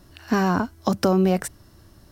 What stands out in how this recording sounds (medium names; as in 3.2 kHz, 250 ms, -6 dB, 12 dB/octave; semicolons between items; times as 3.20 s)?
noise floor -53 dBFS; spectral tilt -6.0 dB/octave